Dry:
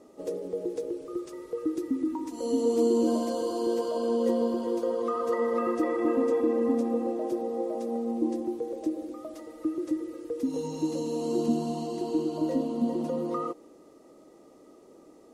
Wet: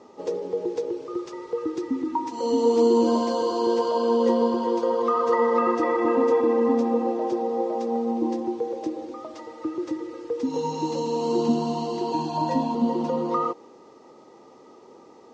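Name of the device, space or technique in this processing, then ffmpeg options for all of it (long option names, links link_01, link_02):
car door speaker: -filter_complex "[0:a]lowpass=frequency=6300:width=0.5412,lowpass=frequency=6300:width=1.3066,highpass=110,equalizer=frequency=180:width_type=q:width=4:gain=-5,equalizer=frequency=300:width_type=q:width=4:gain=-9,equalizer=frequency=620:width_type=q:width=4:gain=-8,equalizer=frequency=900:width_type=q:width=4:gain=9,lowpass=frequency=8200:width=0.5412,lowpass=frequency=8200:width=1.3066,asettb=1/sr,asplit=3[link_01][link_02][link_03];[link_01]atrim=end=12.124[link_04];[link_02]atrim=start=12.12:end=12.75,asetpts=PTS-STARTPTS,afade=type=in:duration=0.004:curve=qsin,afade=type=out:start_time=0.626:duration=0.004:curve=qsin,aecho=1:1:1.2:0.97,atrim=end_sample=27783[link_05];[link_03]atrim=start=12.746[link_06];[link_04][link_05]acrossfade=duration=0.004:curve1=hsin:curve2=qsin[link_07];[link_07][link_06]acrossfade=duration=0.004:curve1=qsin:curve2=hsin,volume=7.5dB"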